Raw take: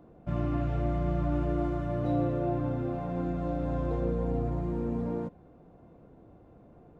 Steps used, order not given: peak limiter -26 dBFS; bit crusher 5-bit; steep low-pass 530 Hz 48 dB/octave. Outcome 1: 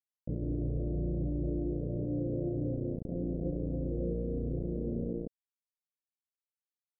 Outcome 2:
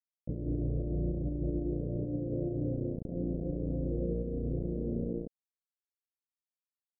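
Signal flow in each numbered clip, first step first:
bit crusher > steep low-pass > peak limiter; bit crusher > peak limiter > steep low-pass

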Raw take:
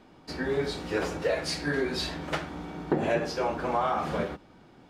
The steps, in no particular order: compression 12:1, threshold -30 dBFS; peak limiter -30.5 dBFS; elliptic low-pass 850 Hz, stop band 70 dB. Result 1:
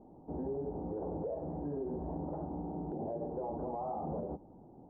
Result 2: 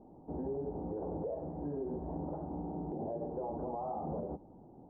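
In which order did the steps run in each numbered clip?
elliptic low-pass > compression > peak limiter; compression > elliptic low-pass > peak limiter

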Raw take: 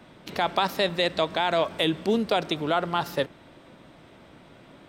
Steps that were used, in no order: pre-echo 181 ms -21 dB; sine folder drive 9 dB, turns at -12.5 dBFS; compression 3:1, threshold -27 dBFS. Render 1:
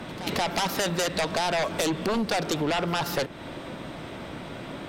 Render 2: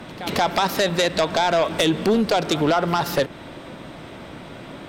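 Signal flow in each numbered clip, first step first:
sine folder > pre-echo > compression; pre-echo > compression > sine folder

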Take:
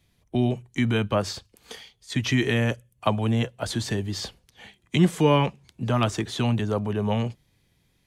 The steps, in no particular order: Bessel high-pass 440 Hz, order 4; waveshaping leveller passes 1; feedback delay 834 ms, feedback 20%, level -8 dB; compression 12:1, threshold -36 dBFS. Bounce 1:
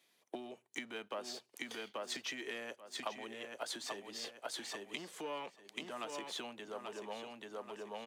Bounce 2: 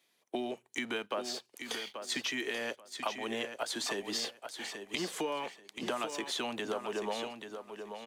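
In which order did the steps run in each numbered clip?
waveshaping leveller > feedback delay > compression > Bessel high-pass; Bessel high-pass > compression > waveshaping leveller > feedback delay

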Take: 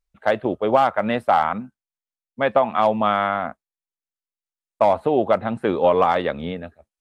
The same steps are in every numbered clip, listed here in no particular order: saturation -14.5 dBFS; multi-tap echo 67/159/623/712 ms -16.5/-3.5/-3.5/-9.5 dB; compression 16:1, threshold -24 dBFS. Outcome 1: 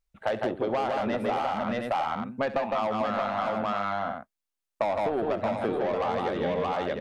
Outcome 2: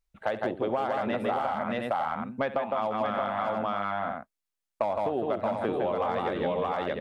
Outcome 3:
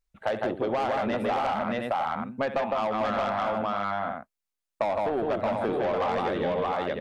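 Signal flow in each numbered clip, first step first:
saturation > multi-tap echo > compression; multi-tap echo > compression > saturation; multi-tap echo > saturation > compression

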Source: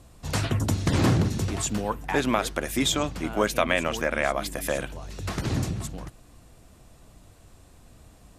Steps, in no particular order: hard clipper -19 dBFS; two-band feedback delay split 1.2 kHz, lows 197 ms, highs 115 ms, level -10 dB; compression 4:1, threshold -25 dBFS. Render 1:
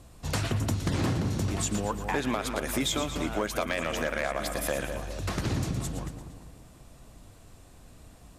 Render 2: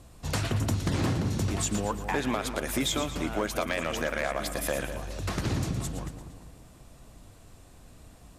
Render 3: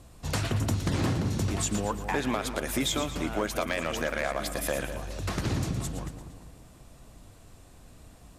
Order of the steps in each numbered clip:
two-band feedback delay > compression > hard clipper; compression > two-band feedback delay > hard clipper; compression > hard clipper > two-band feedback delay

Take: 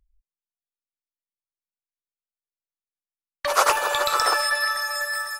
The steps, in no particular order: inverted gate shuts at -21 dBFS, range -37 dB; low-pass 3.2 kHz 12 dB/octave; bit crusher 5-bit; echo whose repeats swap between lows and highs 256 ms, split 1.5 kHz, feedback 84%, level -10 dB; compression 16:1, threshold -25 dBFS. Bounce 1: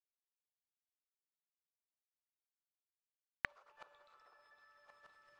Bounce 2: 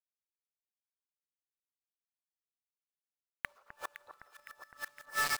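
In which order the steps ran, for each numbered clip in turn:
echo whose repeats swap between lows and highs > bit crusher > compression > inverted gate > low-pass; low-pass > bit crusher > compression > inverted gate > echo whose repeats swap between lows and highs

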